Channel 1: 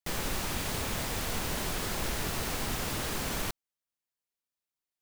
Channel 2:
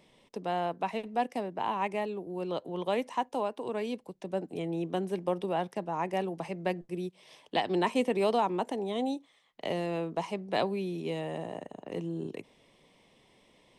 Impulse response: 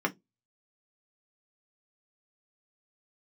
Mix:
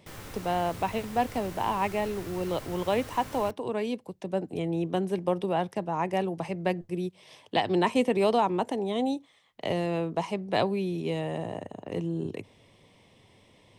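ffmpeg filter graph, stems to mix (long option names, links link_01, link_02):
-filter_complex "[0:a]volume=-13.5dB,asplit=2[link_01][link_02];[link_02]volume=-12dB[link_03];[1:a]volume=3dB[link_04];[2:a]atrim=start_sample=2205[link_05];[link_03][link_05]afir=irnorm=-1:irlink=0[link_06];[link_01][link_04][link_06]amix=inputs=3:normalize=0,equalizer=frequency=99:width_type=o:width=0.66:gain=14.5"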